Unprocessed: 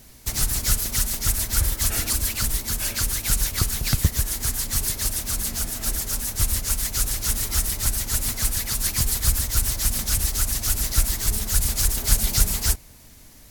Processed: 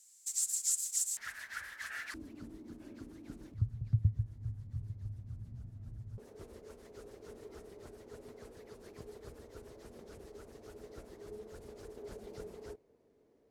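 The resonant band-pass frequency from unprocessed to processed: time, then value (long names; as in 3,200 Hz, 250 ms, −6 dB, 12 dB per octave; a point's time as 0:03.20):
resonant band-pass, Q 6.1
7,500 Hz
from 0:01.17 1,700 Hz
from 0:02.14 300 Hz
from 0:03.54 110 Hz
from 0:06.18 430 Hz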